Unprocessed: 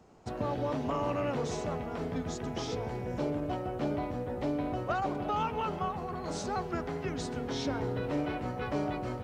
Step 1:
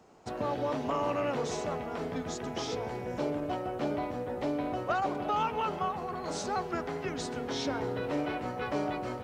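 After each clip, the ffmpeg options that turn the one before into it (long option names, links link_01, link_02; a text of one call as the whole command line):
ffmpeg -i in.wav -af "lowshelf=frequency=180:gain=-10.5,volume=2.5dB" out.wav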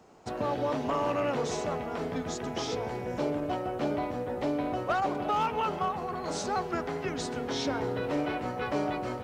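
ffmpeg -i in.wav -af "asoftclip=type=hard:threshold=-23dB,volume=2dB" out.wav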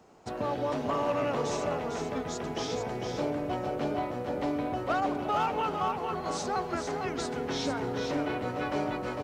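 ffmpeg -i in.wav -af "aecho=1:1:452:0.501,volume=-1dB" out.wav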